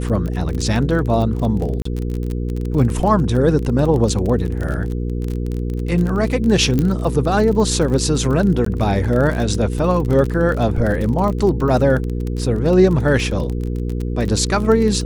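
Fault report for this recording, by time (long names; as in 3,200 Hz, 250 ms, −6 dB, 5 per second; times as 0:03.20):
surface crackle 29 per second −22 dBFS
mains hum 60 Hz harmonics 8 −22 dBFS
0:01.82–0:01.85: drop-out 34 ms
0:06.79: click −7 dBFS
0:08.65–0:08.66: drop-out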